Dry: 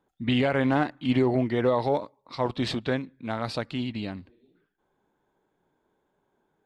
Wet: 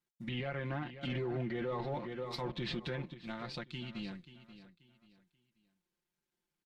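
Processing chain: G.711 law mismatch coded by A; treble ducked by the level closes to 2400 Hz, closed at -24.5 dBFS; bell 660 Hz -11 dB 2.5 oct; feedback echo 0.534 s, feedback 31%, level -14 dB; 1.03–3.14 sine folder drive 4 dB, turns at -13.5 dBFS; bell 110 Hz -7.5 dB 0.3 oct; comb 5.7 ms, depth 76%; limiter -24 dBFS, peak gain reduction 11.5 dB; gain -5.5 dB

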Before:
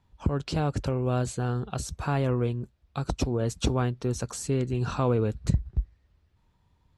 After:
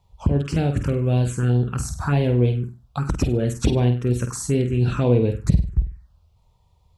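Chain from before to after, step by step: flutter echo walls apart 8.4 m, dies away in 0.39 s; envelope phaser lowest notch 270 Hz, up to 1300 Hz, full sweep at -21 dBFS; gain +7 dB

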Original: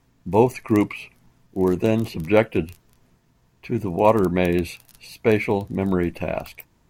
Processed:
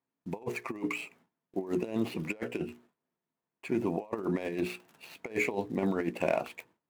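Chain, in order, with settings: median filter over 9 samples; HPF 240 Hz 12 dB/oct; notches 60/120/180/240/300/360/420/480 Hz; gate with hold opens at -51 dBFS; negative-ratio compressor -26 dBFS, ratio -0.5; gain -5.5 dB

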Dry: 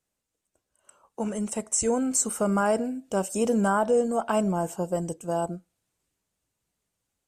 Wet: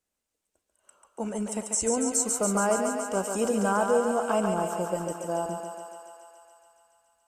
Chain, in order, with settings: bell 130 Hz -9.5 dB 0.56 oct; on a send: thinning echo 0.141 s, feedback 78%, high-pass 350 Hz, level -4.5 dB; on the sum: gain -2 dB

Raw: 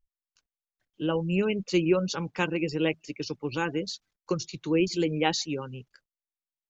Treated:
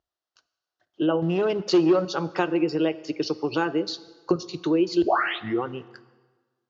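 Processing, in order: 1.22–2.05 sample leveller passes 2; 3.89–4.36 tone controls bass +14 dB, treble -4 dB; 5.02 tape start 0.63 s; compressor 5:1, threshold -31 dBFS, peak gain reduction 14 dB; speaker cabinet 120–5500 Hz, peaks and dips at 130 Hz -6 dB, 210 Hz -9 dB, 350 Hz +6 dB, 690 Hz +10 dB, 1300 Hz +5 dB, 2300 Hz -9 dB; plate-style reverb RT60 1.4 s, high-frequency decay 0.8×, DRR 15 dB; gain +8.5 dB

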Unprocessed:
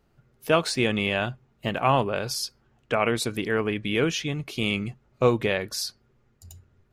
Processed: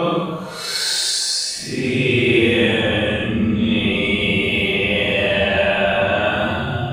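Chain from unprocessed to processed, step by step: in parallel at -1 dB: limiter -17.5 dBFS, peak gain reduction 9.5 dB; on the sum: Paulstretch 9.8×, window 0.05 s, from 0.59; two-slope reverb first 0.76 s, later 2.6 s, DRR 0.5 dB

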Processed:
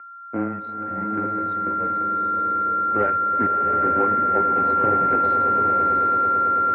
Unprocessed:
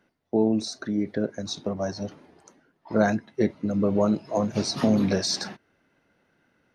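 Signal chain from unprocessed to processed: G.711 law mismatch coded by A; whine 1500 Hz -32 dBFS; added harmonics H 7 -23 dB, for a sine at -6.5 dBFS; swelling echo 0.11 s, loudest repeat 8, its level -14 dB; mistuned SSB -120 Hz 320–2500 Hz; bloom reverb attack 0.85 s, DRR 2.5 dB

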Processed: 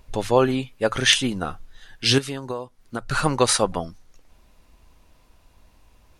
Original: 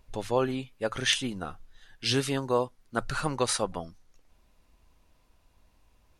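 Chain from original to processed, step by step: 2.18–3.11 compressor 10:1, threshold -35 dBFS, peak gain reduction 15 dB; gain +8.5 dB

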